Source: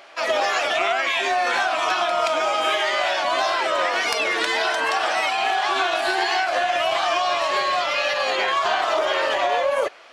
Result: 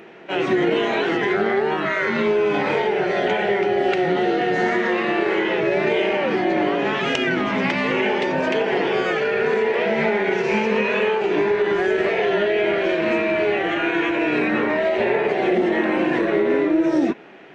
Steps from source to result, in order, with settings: graphic EQ 250/2000/4000/8000 Hz +7/-10/+5/-6 dB; in parallel at -3 dB: limiter -19 dBFS, peak gain reduction 10 dB; on the sum: speed mistake 78 rpm record played at 45 rpm

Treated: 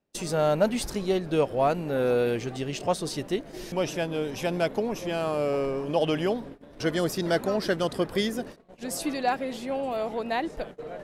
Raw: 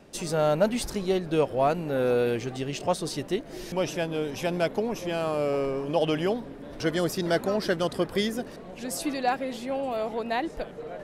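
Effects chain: gate -39 dBFS, range -28 dB

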